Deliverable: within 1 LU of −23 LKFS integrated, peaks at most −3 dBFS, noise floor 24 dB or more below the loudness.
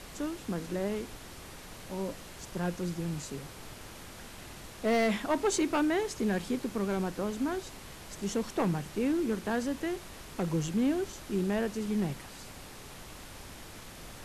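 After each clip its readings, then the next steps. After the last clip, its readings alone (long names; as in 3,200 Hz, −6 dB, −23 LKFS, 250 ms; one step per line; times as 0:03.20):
share of clipped samples 0.6%; peaks flattened at −22.0 dBFS; background noise floor −47 dBFS; target noise floor −57 dBFS; integrated loudness −32.5 LKFS; sample peak −22.0 dBFS; target loudness −23.0 LKFS
→ clipped peaks rebuilt −22 dBFS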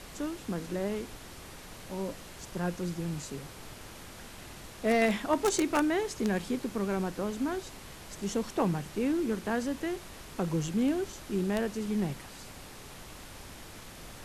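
share of clipped samples 0.0%; background noise floor −47 dBFS; target noise floor −56 dBFS
→ noise reduction from a noise print 9 dB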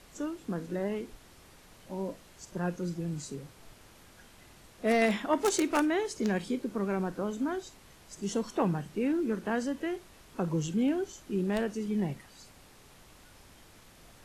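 background noise floor −56 dBFS; integrated loudness −32.0 LKFS; sample peak −13.0 dBFS; target loudness −23.0 LKFS
→ level +9 dB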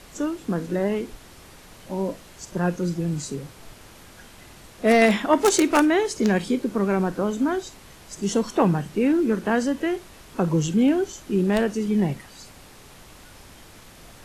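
integrated loudness −23.0 LKFS; sample peak −4.0 dBFS; background noise floor −47 dBFS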